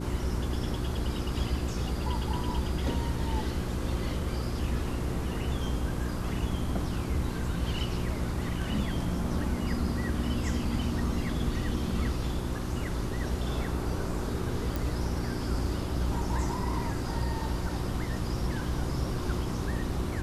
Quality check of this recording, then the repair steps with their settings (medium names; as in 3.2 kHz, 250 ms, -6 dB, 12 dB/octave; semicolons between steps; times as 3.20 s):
hum 60 Hz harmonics 6 -35 dBFS
14.76 s: pop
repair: de-click; de-hum 60 Hz, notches 6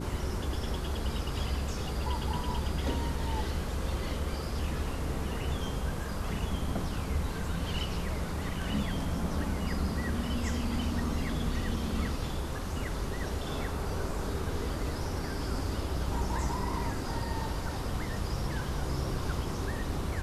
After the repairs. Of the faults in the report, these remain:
nothing left